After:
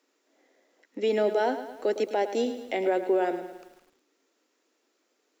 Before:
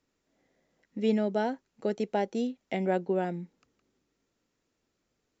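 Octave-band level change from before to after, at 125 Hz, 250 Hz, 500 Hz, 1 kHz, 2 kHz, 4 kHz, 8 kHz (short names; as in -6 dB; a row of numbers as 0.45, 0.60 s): under -10 dB, -2.0 dB, +5.0 dB, +4.0 dB, +4.5 dB, +5.5 dB, n/a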